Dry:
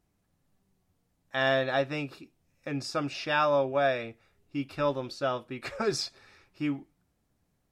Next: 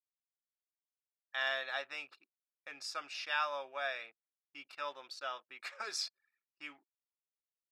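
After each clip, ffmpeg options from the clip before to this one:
-af "anlmdn=0.0158,highpass=1.2k,volume=-4.5dB"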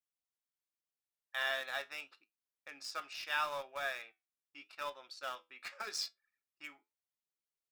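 -filter_complex "[0:a]asplit=2[a][b];[b]acrusher=bits=5:mix=0:aa=0.000001,volume=-11dB[c];[a][c]amix=inputs=2:normalize=0,flanger=delay=8.8:depth=3.3:regen=70:speed=0.82:shape=sinusoidal,volume=1.5dB"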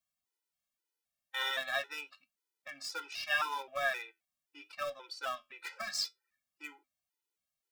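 -af "afftfilt=real='re*gt(sin(2*PI*1.9*pts/sr)*(1-2*mod(floor(b*sr/1024/260),2)),0)':imag='im*gt(sin(2*PI*1.9*pts/sr)*(1-2*mod(floor(b*sr/1024/260),2)),0)':win_size=1024:overlap=0.75,volume=7dB"

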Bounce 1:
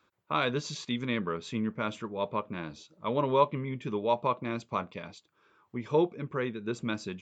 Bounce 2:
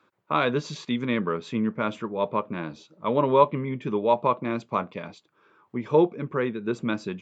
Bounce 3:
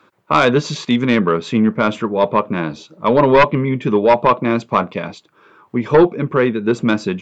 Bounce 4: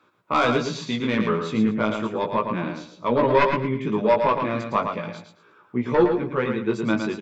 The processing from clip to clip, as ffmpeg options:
-af "highpass=130,highshelf=f=3.5k:g=-11,volume=6.5dB"
-af "aeval=exprs='0.596*sin(PI/2*2.51*val(0)/0.596)':c=same"
-af "flanger=delay=16.5:depth=2.4:speed=0.34,aecho=1:1:112|224|336:0.501|0.12|0.0289,volume=-5dB"

